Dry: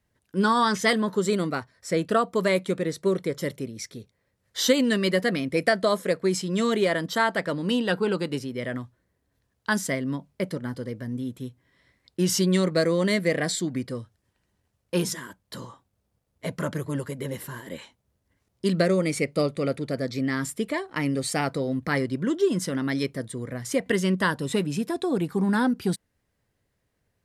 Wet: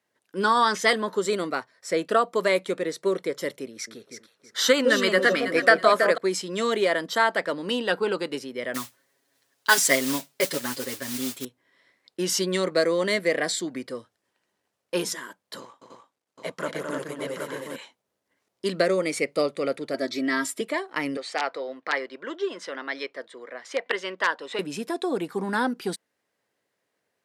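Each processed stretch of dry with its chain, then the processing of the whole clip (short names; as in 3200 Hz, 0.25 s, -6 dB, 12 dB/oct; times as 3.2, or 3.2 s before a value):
3.71–6.18 bell 1400 Hz +10 dB 0.72 oct + echo with dull and thin repeats by turns 0.162 s, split 870 Hz, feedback 54%, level -3 dB
8.74–11.45 modulation noise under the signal 14 dB + high shelf 2100 Hz +9 dB + comb 7.3 ms, depth 91%
15.6–17.76 G.711 law mismatch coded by A + LPF 11000 Hz + tapped delay 0.214/0.301/0.775 s -6/-3.5/-5 dB
19.94–20.61 HPF 48 Hz + bell 3700 Hz +2.5 dB 0.35 oct + comb 3.1 ms, depth 89%
21.17–24.59 wrapped overs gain 12 dB + BPF 520–3800 Hz
whole clip: HPF 360 Hz 12 dB/oct; high shelf 9700 Hz -5.5 dB; gain +2 dB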